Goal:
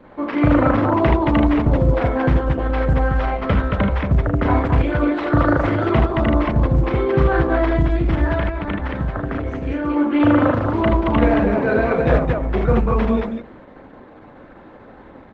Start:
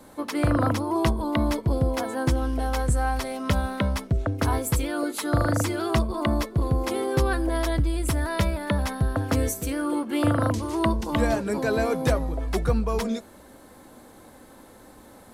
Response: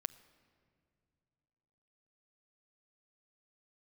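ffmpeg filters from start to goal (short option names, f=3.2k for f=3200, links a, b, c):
-filter_complex "[0:a]asplit=2[a][b];[1:a]atrim=start_sample=2205,afade=t=out:st=0.39:d=0.01,atrim=end_sample=17640[c];[b][c]afir=irnorm=-1:irlink=0,volume=-1dB[d];[a][d]amix=inputs=2:normalize=0,asplit=3[e][f][g];[e]afade=t=out:st=8.27:d=0.02[h];[f]acompressor=threshold=-21dB:ratio=16,afade=t=in:st=8.27:d=0.02,afade=t=out:st=9.95:d=0.02[i];[g]afade=t=in:st=9.95:d=0.02[j];[h][i][j]amix=inputs=3:normalize=0,lowpass=f=2.7k:w=0.5412,lowpass=f=2.7k:w=1.3066,aecho=1:1:34.99|78.72|224.5:0.708|0.562|0.708" -ar 48000 -c:a libopus -b:a 12k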